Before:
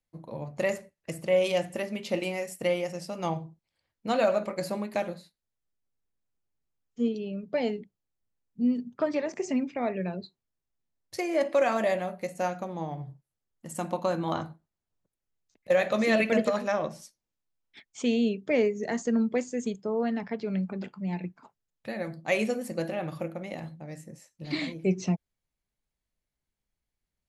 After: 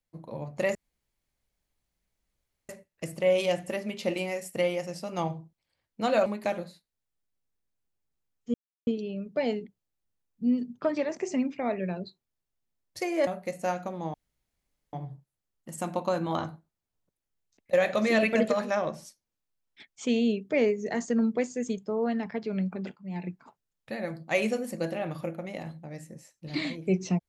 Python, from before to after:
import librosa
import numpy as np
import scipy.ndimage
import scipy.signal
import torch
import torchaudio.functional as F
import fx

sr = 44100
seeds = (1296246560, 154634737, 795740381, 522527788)

y = fx.edit(x, sr, fx.insert_room_tone(at_s=0.75, length_s=1.94),
    fx.cut(start_s=4.32, length_s=0.44),
    fx.insert_silence(at_s=7.04, length_s=0.33),
    fx.cut(start_s=11.44, length_s=0.59),
    fx.insert_room_tone(at_s=12.9, length_s=0.79),
    fx.fade_in_from(start_s=20.93, length_s=0.31, floor_db=-14.0), tone=tone)